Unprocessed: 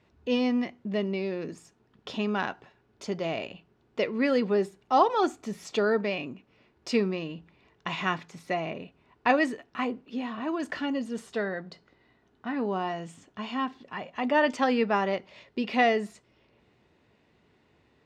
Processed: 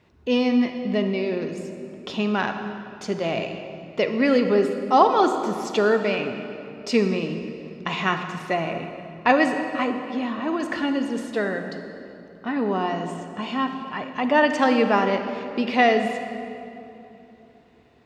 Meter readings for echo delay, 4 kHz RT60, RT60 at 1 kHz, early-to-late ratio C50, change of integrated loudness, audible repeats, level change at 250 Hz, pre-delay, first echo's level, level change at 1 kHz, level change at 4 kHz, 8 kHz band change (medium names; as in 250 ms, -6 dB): no echo, 1.9 s, 2.8 s, 7.0 dB, +5.5 dB, no echo, +6.5 dB, 38 ms, no echo, +6.0 dB, +5.5 dB, +5.5 dB